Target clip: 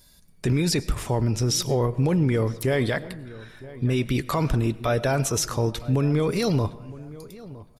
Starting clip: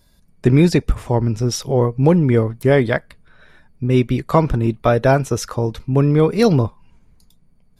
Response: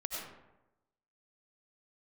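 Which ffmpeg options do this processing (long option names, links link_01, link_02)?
-filter_complex "[0:a]highshelf=frequency=2400:gain=10.5,alimiter=limit=-12.5dB:level=0:latency=1:release=15,asplit=2[link_01][link_02];[link_02]adelay=963,lowpass=frequency=1700:poles=1,volume=-18dB,asplit=2[link_03][link_04];[link_04]adelay=963,lowpass=frequency=1700:poles=1,volume=0.3,asplit=2[link_05][link_06];[link_06]adelay=963,lowpass=frequency=1700:poles=1,volume=0.3[link_07];[link_01][link_03][link_05][link_07]amix=inputs=4:normalize=0,asplit=2[link_08][link_09];[1:a]atrim=start_sample=2205,adelay=7[link_10];[link_09][link_10]afir=irnorm=-1:irlink=0,volume=-17.5dB[link_11];[link_08][link_11]amix=inputs=2:normalize=0,volume=-2.5dB"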